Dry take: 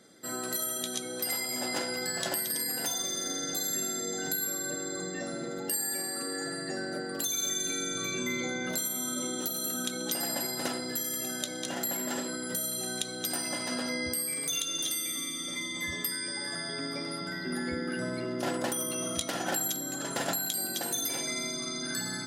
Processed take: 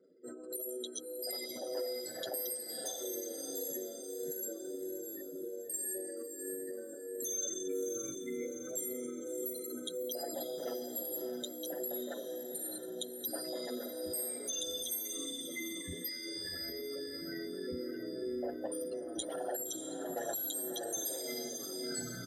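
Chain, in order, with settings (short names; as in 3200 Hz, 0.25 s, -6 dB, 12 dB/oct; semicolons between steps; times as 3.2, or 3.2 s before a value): formant sharpening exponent 3; diffused feedback echo 0.633 s, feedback 43%, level -7 dB; endless flanger 7.6 ms -1.7 Hz; gain -4 dB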